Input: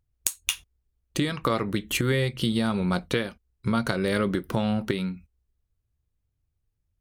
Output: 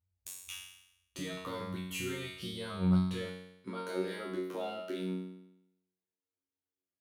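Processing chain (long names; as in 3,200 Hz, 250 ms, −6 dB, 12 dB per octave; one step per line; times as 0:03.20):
high-pass filter sweep 63 Hz → 340 Hz, 0:02.92–0:03.76
brickwall limiter −15.5 dBFS, peak gain reduction 8 dB
tuned comb filter 92 Hz, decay 0.83 s, harmonics all, mix 100%
level +4 dB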